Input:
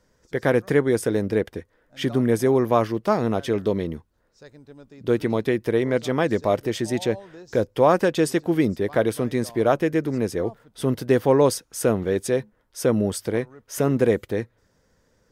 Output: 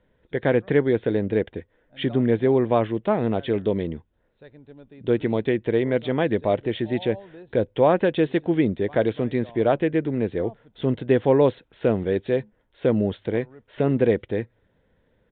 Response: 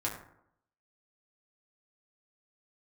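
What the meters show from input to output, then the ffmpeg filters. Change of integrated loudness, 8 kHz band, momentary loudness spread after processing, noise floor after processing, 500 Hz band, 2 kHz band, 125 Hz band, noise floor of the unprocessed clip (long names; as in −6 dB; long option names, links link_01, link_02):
−0.5 dB, below −40 dB, 9 LU, −67 dBFS, −0.5 dB, −1.5 dB, 0.0 dB, −66 dBFS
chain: -af "equalizer=frequency=1200:width=2.5:gain=-7,aresample=8000,aresample=44100"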